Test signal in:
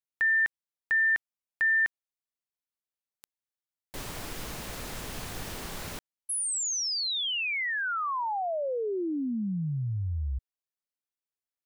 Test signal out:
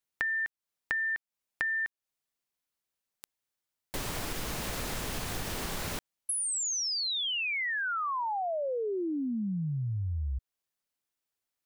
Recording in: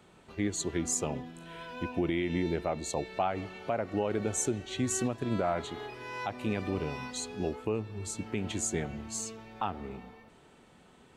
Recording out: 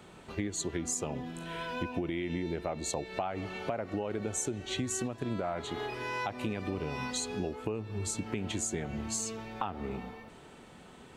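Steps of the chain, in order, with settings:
downward compressor, threshold −37 dBFS
level +6 dB

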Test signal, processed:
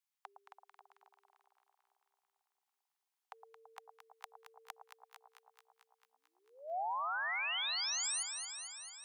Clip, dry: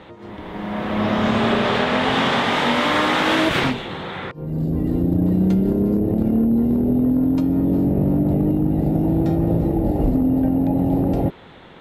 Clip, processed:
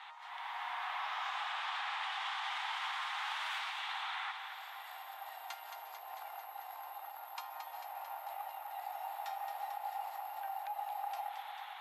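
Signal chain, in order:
Chebyshev high-pass filter 770 Hz, order 6
brickwall limiter −16 dBFS
downward compressor 8 to 1, threshold −35 dBFS
on a send: delay that swaps between a low-pass and a high-pass 111 ms, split 1,000 Hz, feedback 83%, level −5.5 dB
on the sum: level −3 dB

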